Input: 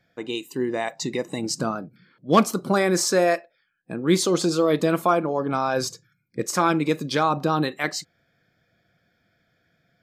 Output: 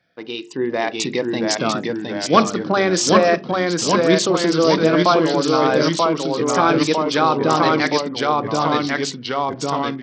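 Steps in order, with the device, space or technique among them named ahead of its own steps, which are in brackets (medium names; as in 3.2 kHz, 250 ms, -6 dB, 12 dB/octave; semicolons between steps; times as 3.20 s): hum notches 50/100/150/200/250/300/350/400/450 Hz; ever faster or slower copies 634 ms, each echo -1 st, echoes 3; Bluetooth headset (high-pass 160 Hz 6 dB/octave; level rider gain up to 5 dB; resampled via 16 kHz; trim +1 dB; SBC 64 kbps 44.1 kHz)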